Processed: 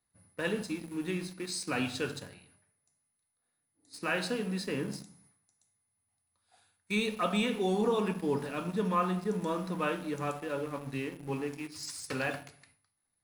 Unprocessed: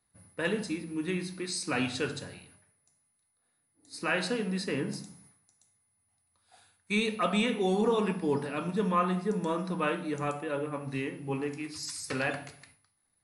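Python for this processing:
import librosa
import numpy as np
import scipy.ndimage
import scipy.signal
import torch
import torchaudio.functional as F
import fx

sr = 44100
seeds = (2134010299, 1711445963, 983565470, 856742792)

p1 = np.where(np.abs(x) >= 10.0 ** (-37.0 / 20.0), x, 0.0)
p2 = x + F.gain(torch.from_numpy(p1), -4.5).numpy()
p3 = fx.dynamic_eq(p2, sr, hz=2000.0, q=7.1, threshold_db=-49.0, ratio=4.0, max_db=-4)
y = F.gain(torch.from_numpy(p3), -6.0).numpy()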